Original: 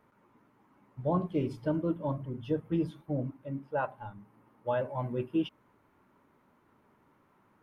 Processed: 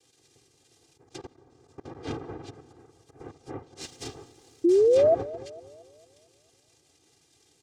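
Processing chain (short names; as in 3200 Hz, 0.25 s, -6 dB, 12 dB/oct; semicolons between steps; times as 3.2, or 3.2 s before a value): auto swell 0.32 s; fixed phaser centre 2600 Hz, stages 8; 2.67–3.2 compressor 6:1, threshold -55 dBFS, peak gain reduction 12.5 dB; noise vocoder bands 2; treble ducked by the level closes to 2400 Hz, closed at -36 dBFS; comb 2.5 ms, depth 88%; plate-style reverb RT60 2.5 s, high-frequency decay 0.8×, pre-delay 0.115 s, DRR 19.5 dB; 1.04–1.95 level quantiser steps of 20 dB; 3.81–4.7 sample leveller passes 1; bell 900 Hz -14 dB 2.4 oct; 4.64–5.15 painted sound rise 330–690 Hz -26 dBFS; analogue delay 0.226 s, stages 2048, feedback 47%, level -18.5 dB; gain +7.5 dB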